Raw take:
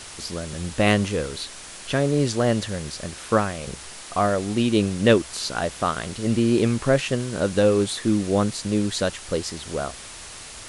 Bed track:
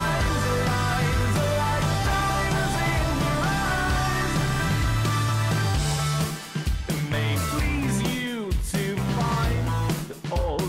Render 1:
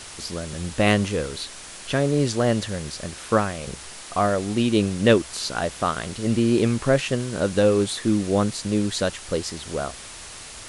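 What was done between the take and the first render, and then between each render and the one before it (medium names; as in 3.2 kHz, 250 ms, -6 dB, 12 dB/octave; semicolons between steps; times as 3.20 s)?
no audible change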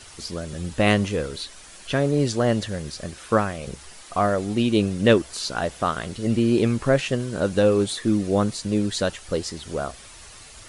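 noise reduction 8 dB, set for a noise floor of -40 dBFS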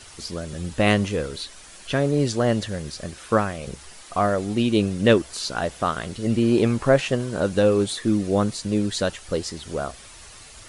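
6.42–7.42 s: peaking EQ 820 Hz +4.5 dB 1.4 oct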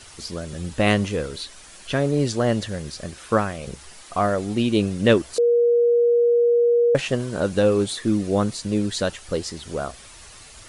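5.38–6.95 s: bleep 475 Hz -14 dBFS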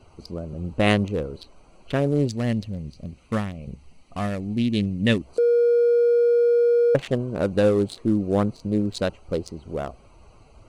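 local Wiener filter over 25 samples; 2.28–5.27 s: time-frequency box 280–1700 Hz -9 dB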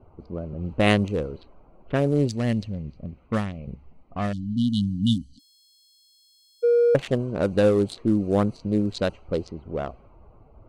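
level-controlled noise filter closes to 910 Hz, open at -19 dBFS; 4.33–6.63 s: spectral selection erased 290–2900 Hz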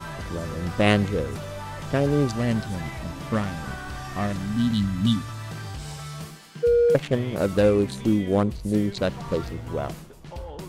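add bed track -11.5 dB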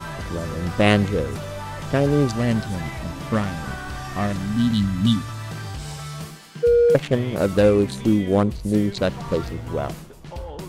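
trim +3 dB; peak limiter -2 dBFS, peak gain reduction 1 dB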